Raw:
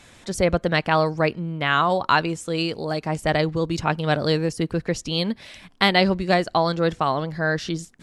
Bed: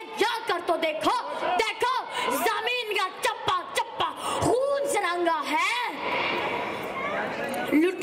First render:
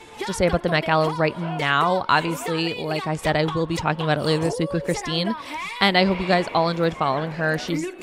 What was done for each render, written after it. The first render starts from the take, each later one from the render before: add bed -6.5 dB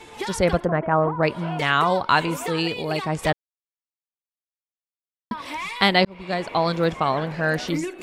0.65–1.23 s: low-pass 1.5 kHz 24 dB/octave; 3.33–5.31 s: mute; 6.05–6.69 s: fade in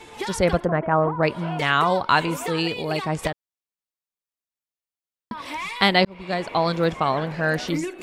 3.27–5.54 s: compression 2.5:1, threshold -27 dBFS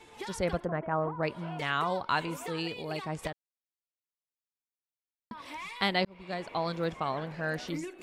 trim -10.5 dB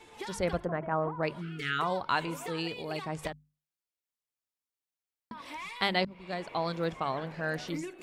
hum notches 50/100/150/200/250 Hz; 1.41–1.79 s: time-frequency box 460–1200 Hz -27 dB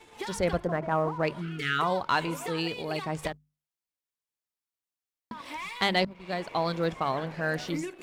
waveshaping leveller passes 1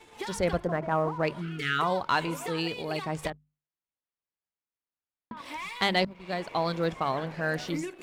3.30–5.37 s: distance through air 360 m

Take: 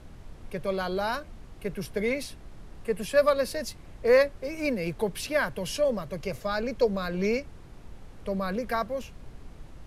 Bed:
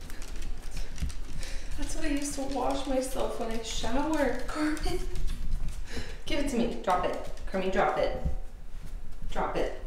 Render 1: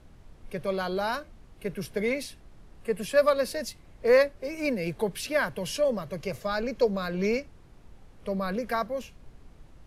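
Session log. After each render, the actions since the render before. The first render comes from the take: noise print and reduce 6 dB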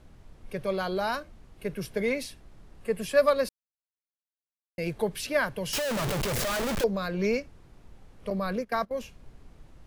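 3.49–4.78 s: mute; 5.73–6.84 s: one-bit comparator; 8.30–8.91 s: gate -33 dBFS, range -18 dB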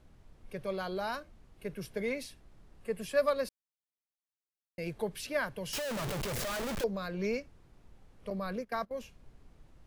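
trim -6.5 dB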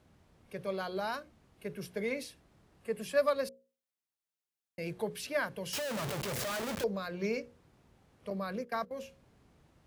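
high-pass 81 Hz 12 dB/octave; hum notches 60/120/180/240/300/360/420/480/540 Hz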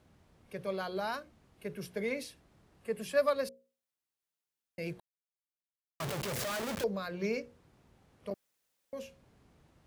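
5.00–6.00 s: mute; 8.34–8.93 s: room tone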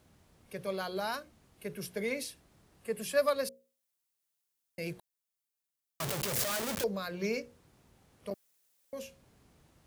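treble shelf 5.1 kHz +9.5 dB

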